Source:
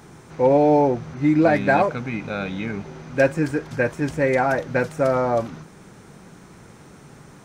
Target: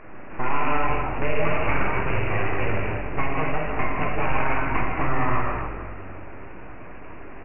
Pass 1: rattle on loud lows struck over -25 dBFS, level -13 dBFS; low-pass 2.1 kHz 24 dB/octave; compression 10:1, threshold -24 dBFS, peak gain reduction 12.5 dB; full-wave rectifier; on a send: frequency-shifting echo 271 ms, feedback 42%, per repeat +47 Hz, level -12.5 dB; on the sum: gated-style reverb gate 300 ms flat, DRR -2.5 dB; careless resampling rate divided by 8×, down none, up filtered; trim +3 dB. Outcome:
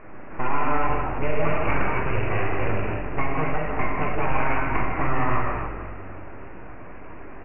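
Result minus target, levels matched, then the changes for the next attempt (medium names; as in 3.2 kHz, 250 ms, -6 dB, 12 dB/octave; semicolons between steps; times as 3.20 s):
4 kHz band -3.0 dB
change: low-pass 5 kHz 24 dB/octave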